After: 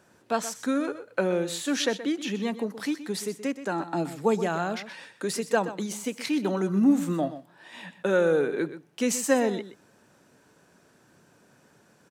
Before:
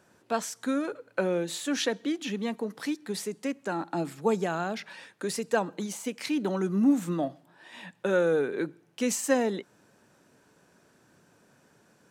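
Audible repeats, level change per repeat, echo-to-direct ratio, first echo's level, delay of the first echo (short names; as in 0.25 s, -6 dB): 1, no steady repeat, -13.0 dB, -13.0 dB, 0.125 s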